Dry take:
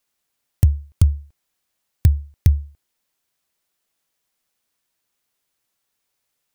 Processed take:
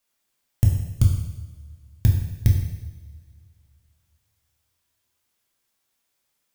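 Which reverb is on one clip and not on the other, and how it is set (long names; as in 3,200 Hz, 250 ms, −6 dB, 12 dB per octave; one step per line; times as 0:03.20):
coupled-rooms reverb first 0.93 s, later 2.6 s, from −19 dB, DRR −1.5 dB
level −3 dB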